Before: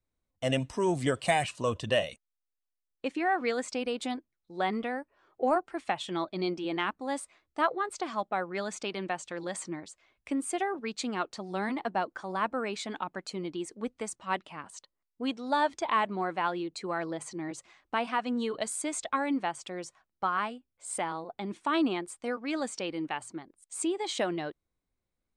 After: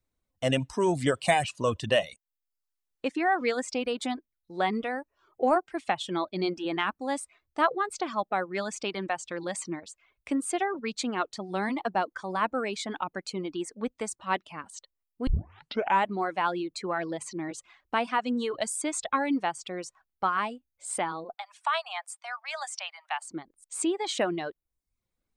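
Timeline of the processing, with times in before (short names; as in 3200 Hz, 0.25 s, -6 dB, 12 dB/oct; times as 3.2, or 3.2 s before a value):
15.27 tape start 0.78 s
21.34–23.31 steep high-pass 630 Hz 96 dB/oct
whole clip: reverb removal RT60 0.55 s; gain +3 dB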